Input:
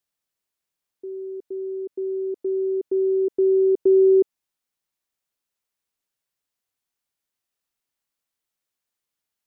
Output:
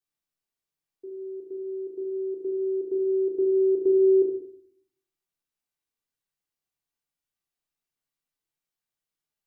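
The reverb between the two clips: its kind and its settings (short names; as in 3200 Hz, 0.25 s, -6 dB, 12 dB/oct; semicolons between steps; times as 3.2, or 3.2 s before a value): shoebox room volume 690 m³, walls furnished, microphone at 3.6 m; gain -10 dB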